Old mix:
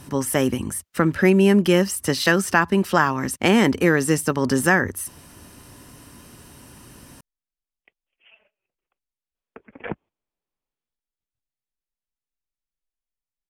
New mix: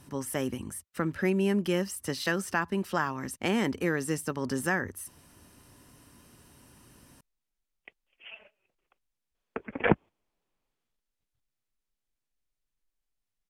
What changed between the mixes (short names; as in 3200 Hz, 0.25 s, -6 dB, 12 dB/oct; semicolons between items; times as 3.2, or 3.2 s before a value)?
speech -11.0 dB; background +7.5 dB